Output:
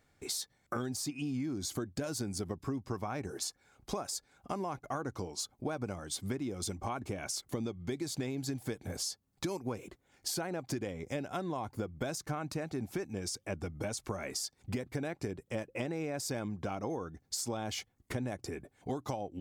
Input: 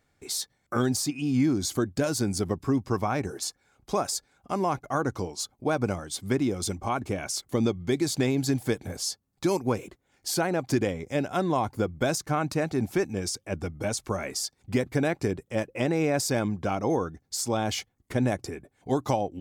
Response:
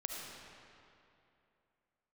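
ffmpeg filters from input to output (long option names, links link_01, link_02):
-af "acompressor=threshold=-34dB:ratio=6"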